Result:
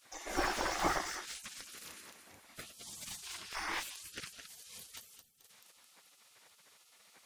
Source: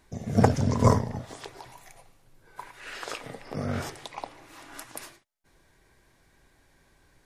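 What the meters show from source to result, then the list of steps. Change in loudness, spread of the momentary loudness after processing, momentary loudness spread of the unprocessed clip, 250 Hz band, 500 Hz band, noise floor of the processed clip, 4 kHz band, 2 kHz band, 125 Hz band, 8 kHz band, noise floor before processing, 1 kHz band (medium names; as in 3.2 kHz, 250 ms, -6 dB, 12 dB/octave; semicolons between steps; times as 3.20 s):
-11.5 dB, 20 LU, 21 LU, -16.5 dB, -13.0 dB, -66 dBFS, +1.0 dB, +0.5 dB, -27.5 dB, 0.0 dB, -64 dBFS, -6.5 dB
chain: thinning echo 217 ms, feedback 42%, high-pass 500 Hz, level -9.5 dB; spectral gate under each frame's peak -20 dB weak; slew-rate limiter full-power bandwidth 24 Hz; trim +7 dB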